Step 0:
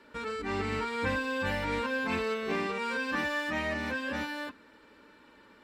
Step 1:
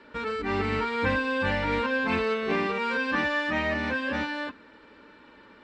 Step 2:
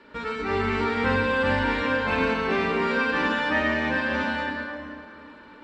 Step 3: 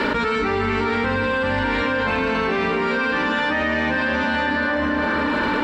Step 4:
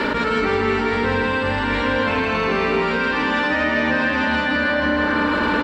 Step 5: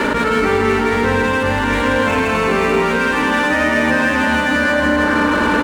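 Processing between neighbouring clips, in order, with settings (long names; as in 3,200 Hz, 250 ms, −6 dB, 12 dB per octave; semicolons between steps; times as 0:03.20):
low-pass filter 4,500 Hz 12 dB per octave; level +5 dB
convolution reverb RT60 2.7 s, pre-delay 27 ms, DRR −0.5 dB
envelope flattener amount 100%
repeating echo 162 ms, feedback 60%, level −5.5 dB
running median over 9 samples; level +4.5 dB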